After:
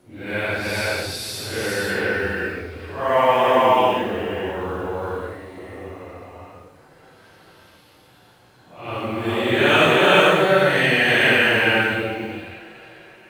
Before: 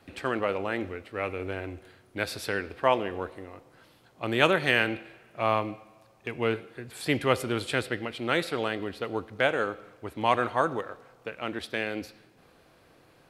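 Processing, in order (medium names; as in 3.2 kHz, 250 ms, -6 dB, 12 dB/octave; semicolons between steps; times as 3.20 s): modulation noise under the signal 34 dB; Paulstretch 4.2×, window 0.10 s, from 2.11 s; gated-style reverb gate 490 ms rising, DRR -2 dB; trim +3.5 dB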